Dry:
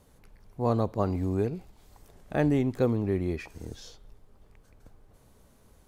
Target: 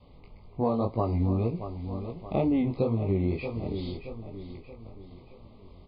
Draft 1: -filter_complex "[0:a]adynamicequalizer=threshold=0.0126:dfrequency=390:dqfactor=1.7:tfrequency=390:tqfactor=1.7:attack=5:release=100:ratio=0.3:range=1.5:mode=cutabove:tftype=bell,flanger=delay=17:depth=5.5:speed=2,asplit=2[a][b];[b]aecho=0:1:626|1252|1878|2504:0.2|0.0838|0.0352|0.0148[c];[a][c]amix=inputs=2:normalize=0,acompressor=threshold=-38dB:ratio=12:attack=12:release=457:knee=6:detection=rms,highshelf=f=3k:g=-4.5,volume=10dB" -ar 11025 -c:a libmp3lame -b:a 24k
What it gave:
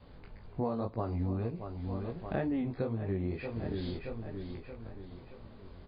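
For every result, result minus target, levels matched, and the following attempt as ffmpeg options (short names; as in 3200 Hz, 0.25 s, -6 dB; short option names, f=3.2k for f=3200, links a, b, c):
compressor: peak gain reduction +8 dB; 2000 Hz band +7.0 dB
-filter_complex "[0:a]adynamicequalizer=threshold=0.0126:dfrequency=390:dqfactor=1.7:tfrequency=390:tqfactor=1.7:attack=5:release=100:ratio=0.3:range=1.5:mode=cutabove:tftype=bell,flanger=delay=17:depth=5.5:speed=2,asplit=2[a][b];[b]aecho=0:1:626|1252|1878|2504:0.2|0.0838|0.0352|0.0148[c];[a][c]amix=inputs=2:normalize=0,acompressor=threshold=-30dB:ratio=12:attack=12:release=457:knee=6:detection=rms,highshelf=f=3k:g=-4.5,volume=10dB" -ar 11025 -c:a libmp3lame -b:a 24k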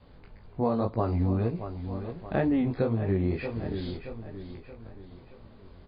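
2000 Hz band +5.5 dB
-filter_complex "[0:a]adynamicequalizer=threshold=0.0126:dfrequency=390:dqfactor=1.7:tfrequency=390:tqfactor=1.7:attack=5:release=100:ratio=0.3:range=1.5:mode=cutabove:tftype=bell,asuperstop=centerf=1600:order=12:qfactor=2.1,flanger=delay=17:depth=5.5:speed=2,asplit=2[a][b];[b]aecho=0:1:626|1252|1878|2504:0.2|0.0838|0.0352|0.0148[c];[a][c]amix=inputs=2:normalize=0,acompressor=threshold=-30dB:ratio=12:attack=12:release=457:knee=6:detection=rms,highshelf=f=3k:g=-4.5,volume=10dB" -ar 11025 -c:a libmp3lame -b:a 24k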